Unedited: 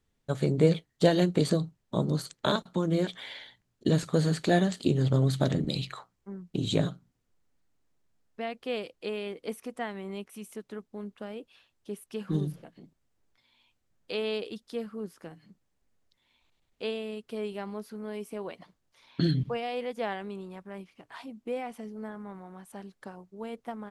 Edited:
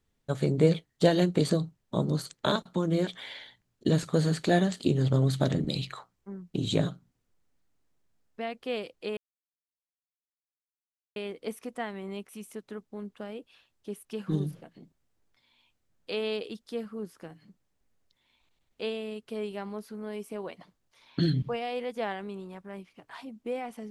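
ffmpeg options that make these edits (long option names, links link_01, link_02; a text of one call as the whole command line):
ffmpeg -i in.wav -filter_complex "[0:a]asplit=2[link_01][link_02];[link_01]atrim=end=9.17,asetpts=PTS-STARTPTS,afade=type=out:start_time=9.166:duration=0.004:curve=hsin,apad=pad_dur=1.99[link_03];[link_02]atrim=start=9.17,asetpts=PTS-STARTPTS,afade=type=in:duration=0.004:curve=hsin[link_04];[link_03][link_04]concat=n=2:v=0:a=1" out.wav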